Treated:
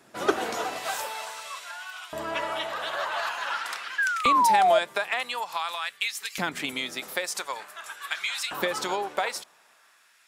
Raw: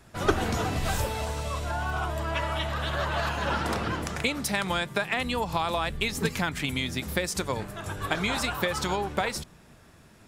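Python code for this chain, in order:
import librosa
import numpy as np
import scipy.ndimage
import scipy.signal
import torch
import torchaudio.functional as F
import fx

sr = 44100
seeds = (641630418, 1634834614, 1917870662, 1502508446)

y = fx.spec_paint(x, sr, seeds[0], shape='fall', start_s=3.98, length_s=0.81, low_hz=620.0, high_hz=1700.0, level_db=-20.0)
y = fx.dmg_tone(y, sr, hz=1300.0, level_db=-55.0, at=(6.7, 7.13), fade=0.02)
y = fx.filter_lfo_highpass(y, sr, shape='saw_up', hz=0.47, low_hz=250.0, high_hz=2700.0, q=0.99)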